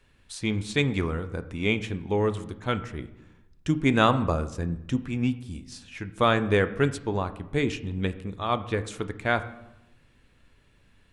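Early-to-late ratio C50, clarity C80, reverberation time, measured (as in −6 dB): 14.5 dB, 16.5 dB, 0.90 s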